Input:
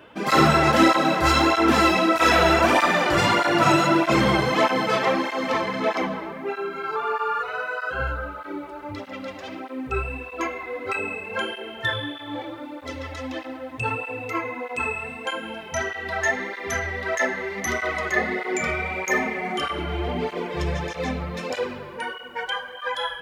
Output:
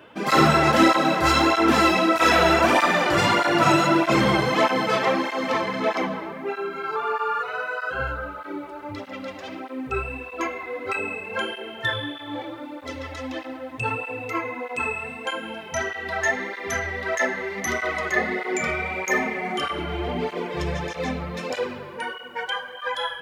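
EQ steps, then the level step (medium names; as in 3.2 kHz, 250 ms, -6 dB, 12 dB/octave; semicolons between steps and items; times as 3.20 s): high-pass 73 Hz; 0.0 dB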